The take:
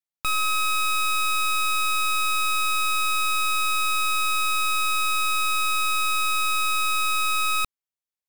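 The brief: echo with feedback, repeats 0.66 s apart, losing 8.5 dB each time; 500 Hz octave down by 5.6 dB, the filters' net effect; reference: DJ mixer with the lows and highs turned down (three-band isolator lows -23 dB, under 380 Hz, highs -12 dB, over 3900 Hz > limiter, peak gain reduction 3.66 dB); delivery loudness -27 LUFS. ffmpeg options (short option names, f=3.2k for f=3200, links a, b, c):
-filter_complex "[0:a]acrossover=split=380 3900:gain=0.0708 1 0.251[a][b][c];[a][b][c]amix=inputs=3:normalize=0,equalizer=f=500:t=o:g=-3.5,aecho=1:1:660|1320|1980|2640:0.376|0.143|0.0543|0.0206,volume=1dB,alimiter=limit=-22dB:level=0:latency=1"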